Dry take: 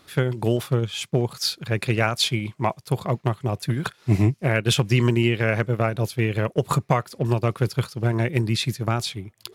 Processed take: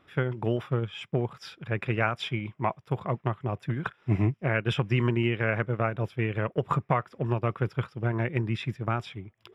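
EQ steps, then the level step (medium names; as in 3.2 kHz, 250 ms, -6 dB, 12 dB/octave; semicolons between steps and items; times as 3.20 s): dynamic bell 1.3 kHz, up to +4 dB, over -39 dBFS, Q 1.2; Savitzky-Golay filter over 25 samples; -6.0 dB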